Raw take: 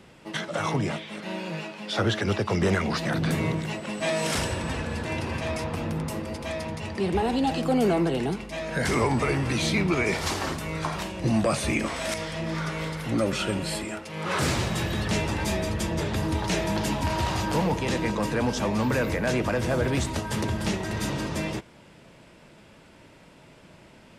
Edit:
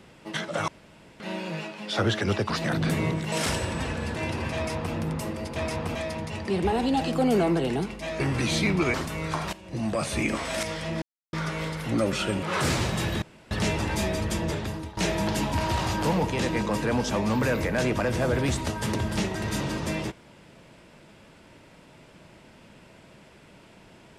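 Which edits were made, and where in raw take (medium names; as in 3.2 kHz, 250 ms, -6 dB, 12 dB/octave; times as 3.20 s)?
0.68–1.20 s: room tone
2.50–2.91 s: delete
3.73–4.21 s: delete
5.44–5.83 s: copy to 6.45 s
8.70–9.31 s: delete
10.05–10.45 s: delete
11.04–11.82 s: fade in, from -14.5 dB
12.53 s: insert silence 0.31 s
13.63–14.21 s: delete
15.00 s: insert room tone 0.29 s
15.93–16.46 s: fade out, to -19.5 dB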